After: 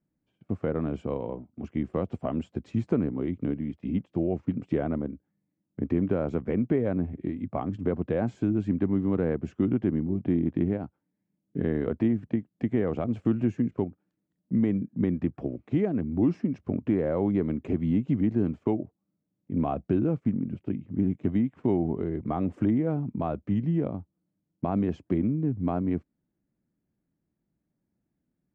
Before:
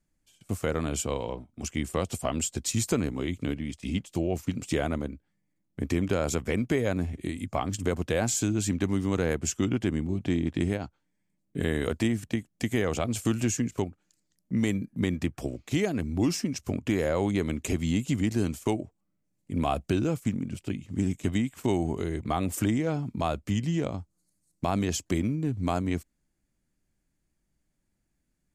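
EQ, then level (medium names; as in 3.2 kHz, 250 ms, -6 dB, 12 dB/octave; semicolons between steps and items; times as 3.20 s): band-pass 190–2200 Hz; tilt EQ -4 dB/octave; -4.0 dB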